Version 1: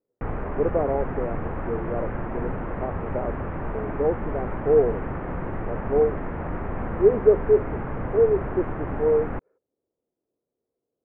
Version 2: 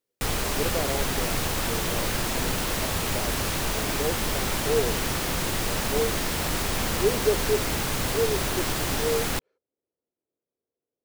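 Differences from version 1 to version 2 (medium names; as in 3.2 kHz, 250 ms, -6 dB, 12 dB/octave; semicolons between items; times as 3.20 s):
speech -7.5 dB; master: remove Bessel low-pass 1.1 kHz, order 8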